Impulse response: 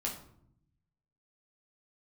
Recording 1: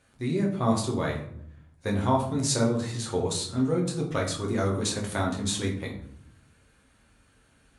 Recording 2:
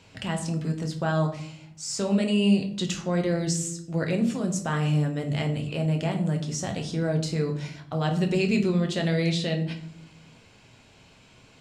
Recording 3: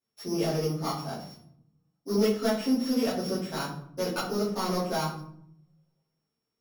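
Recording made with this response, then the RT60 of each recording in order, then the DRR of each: 1; 0.70, 0.70, 0.70 s; -2.0, 3.0, -11.0 dB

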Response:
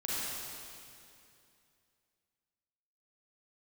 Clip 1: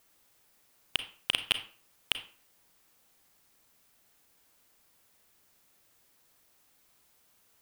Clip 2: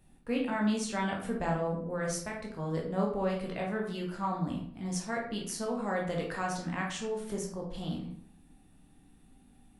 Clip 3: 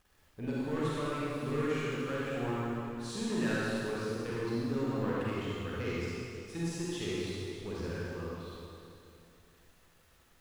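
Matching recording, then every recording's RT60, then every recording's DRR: 3; 0.45, 0.65, 2.6 s; 9.0, -1.5, -8.0 dB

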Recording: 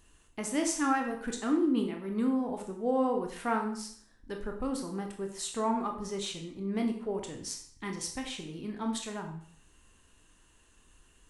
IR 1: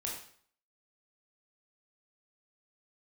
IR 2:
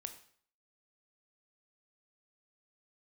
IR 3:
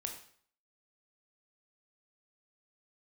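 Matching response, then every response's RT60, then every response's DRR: 3; 0.55, 0.55, 0.55 s; -3.0, 7.0, 2.5 dB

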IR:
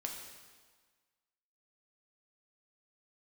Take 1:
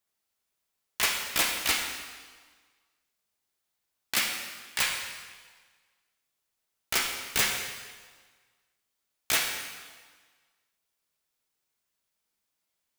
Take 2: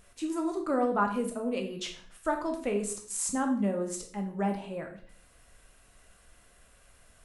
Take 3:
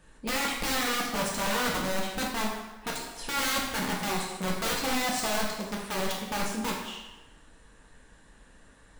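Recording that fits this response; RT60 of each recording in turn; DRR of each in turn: 1; 1.5, 0.50, 1.1 s; 0.5, 2.5, -3.0 dB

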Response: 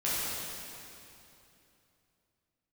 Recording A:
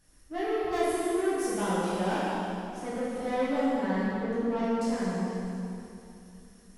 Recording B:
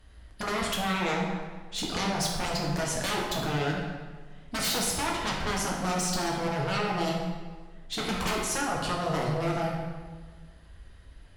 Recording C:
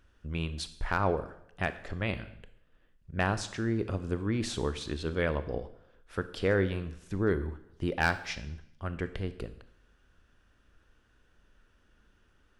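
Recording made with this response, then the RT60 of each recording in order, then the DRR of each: A; 2.9, 1.5, 0.80 s; -10.0, -3.0, 12.0 dB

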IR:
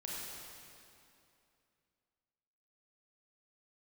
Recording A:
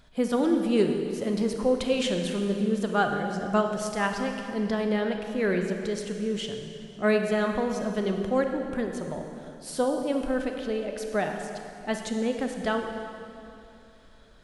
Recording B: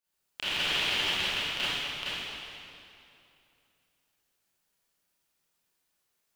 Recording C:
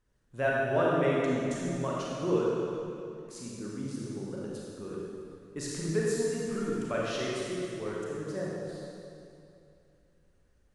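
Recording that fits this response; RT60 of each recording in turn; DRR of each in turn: C; 2.7, 2.7, 2.7 s; 3.5, -14.5, -5.5 dB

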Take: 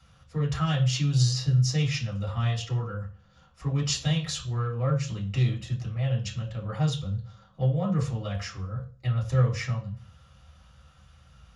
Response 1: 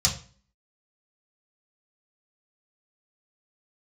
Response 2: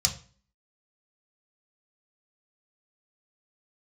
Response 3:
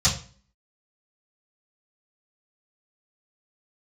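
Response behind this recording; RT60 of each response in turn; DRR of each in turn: 1; 0.40, 0.40, 0.40 s; -3.5, 1.5, -12.0 dB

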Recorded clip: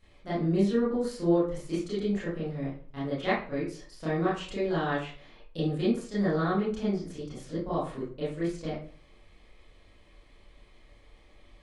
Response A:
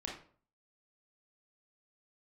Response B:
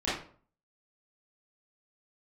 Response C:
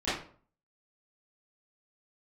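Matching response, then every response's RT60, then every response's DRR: B; 0.50, 0.50, 0.50 s; -2.0, -11.5, -15.5 dB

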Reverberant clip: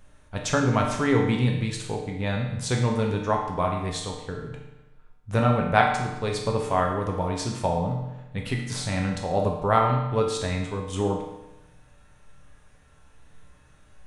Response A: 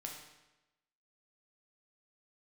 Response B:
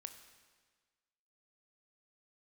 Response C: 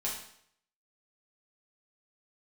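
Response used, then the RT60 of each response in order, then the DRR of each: A; 1.0, 1.5, 0.65 s; 0.0, 7.5, -5.5 dB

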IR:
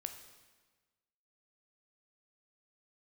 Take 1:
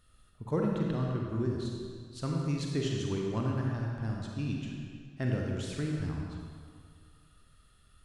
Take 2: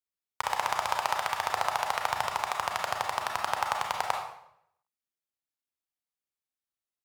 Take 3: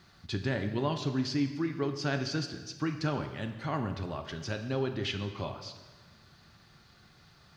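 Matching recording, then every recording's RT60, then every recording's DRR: 3; 2.0, 0.75, 1.3 s; -1.0, 1.5, 6.5 dB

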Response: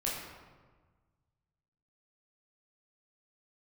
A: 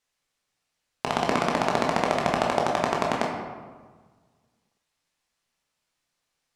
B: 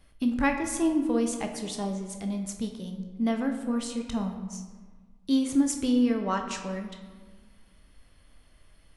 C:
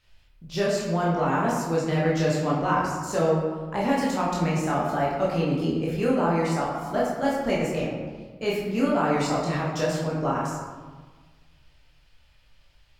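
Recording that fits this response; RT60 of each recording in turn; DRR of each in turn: C; 1.4, 1.4, 1.4 s; -1.5, 3.5, -6.0 dB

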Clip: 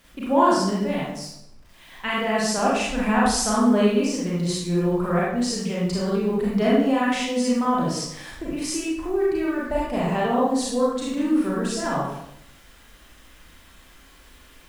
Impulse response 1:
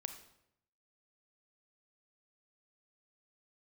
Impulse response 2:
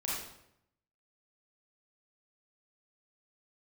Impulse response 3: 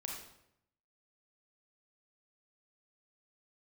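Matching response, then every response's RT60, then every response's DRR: 2; 0.75, 0.75, 0.75 s; 7.5, -6.5, -1.0 dB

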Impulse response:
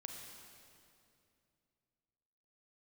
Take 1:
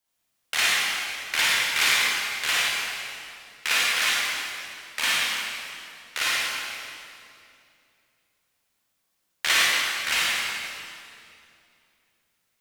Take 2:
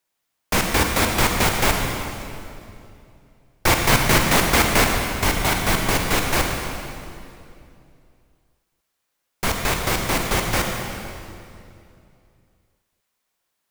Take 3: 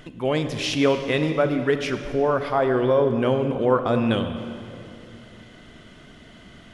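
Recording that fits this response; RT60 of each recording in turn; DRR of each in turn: 2; 2.6, 2.6, 2.5 s; -7.5, 1.5, 8.0 dB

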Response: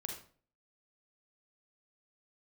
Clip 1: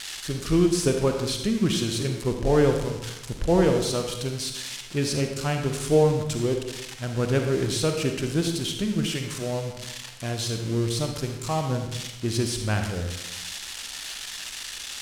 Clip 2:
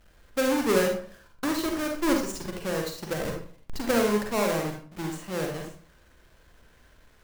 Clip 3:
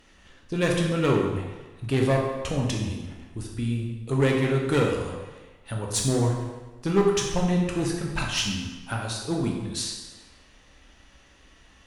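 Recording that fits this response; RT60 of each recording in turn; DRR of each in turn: 2; 0.95, 0.45, 1.2 s; 4.0, 1.5, -1.0 dB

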